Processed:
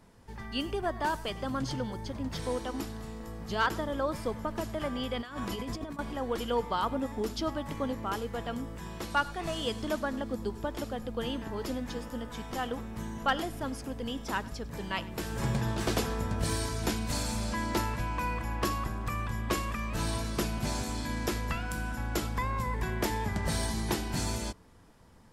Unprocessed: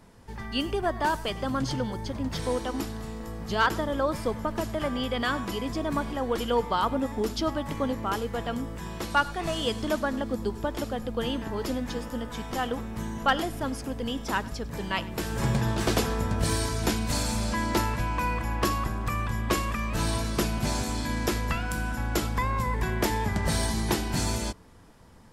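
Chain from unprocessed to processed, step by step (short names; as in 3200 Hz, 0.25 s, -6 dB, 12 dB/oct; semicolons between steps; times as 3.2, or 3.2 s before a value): 5.21–5.99 negative-ratio compressor -32 dBFS, ratio -0.5; gain -4.5 dB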